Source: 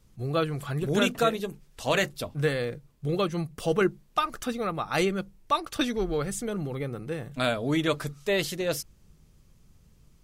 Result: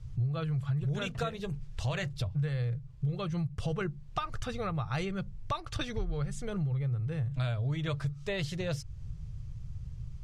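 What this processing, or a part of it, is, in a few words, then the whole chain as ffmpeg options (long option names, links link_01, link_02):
jukebox: -af "lowpass=6500,lowshelf=frequency=170:width_type=q:width=3:gain=13.5,acompressor=threshold=-34dB:ratio=4,volume=2dB"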